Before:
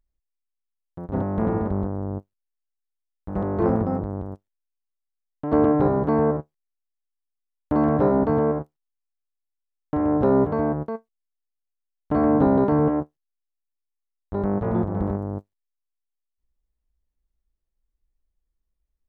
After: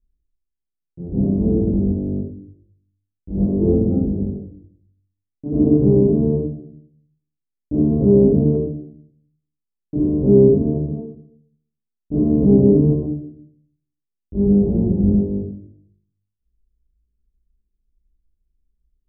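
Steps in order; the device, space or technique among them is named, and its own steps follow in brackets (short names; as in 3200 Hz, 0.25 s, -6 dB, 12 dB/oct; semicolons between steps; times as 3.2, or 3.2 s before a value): next room (LPF 400 Hz 24 dB/oct; reverb RT60 0.65 s, pre-delay 19 ms, DRR -9.5 dB); 8.55–10.09 dynamic EQ 390 Hz, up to +5 dB, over -37 dBFS, Q 3.2; gain -2 dB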